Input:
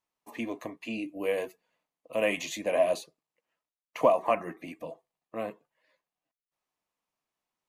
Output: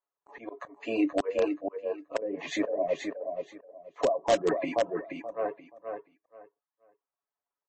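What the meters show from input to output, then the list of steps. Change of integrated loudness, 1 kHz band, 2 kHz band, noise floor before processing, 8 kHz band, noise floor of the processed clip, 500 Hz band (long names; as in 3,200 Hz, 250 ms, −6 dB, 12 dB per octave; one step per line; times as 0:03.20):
−0.5 dB, −1.5 dB, −2.0 dB, below −85 dBFS, −1.5 dB, below −85 dBFS, +0.5 dB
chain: flat-topped bell 790 Hz +14.5 dB 2.8 octaves
noise gate with hold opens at −37 dBFS
treble cut that deepens with the level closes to 340 Hz, closed at −10 dBFS
comb filter 7.1 ms, depth 49%
volume swells 474 ms
reverb reduction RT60 1.2 s
repeating echo 478 ms, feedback 21%, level −6 dB
in parallel at −6 dB: wrap-around overflow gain 19 dB
on the sum: MP3 32 kbit/s 24,000 Hz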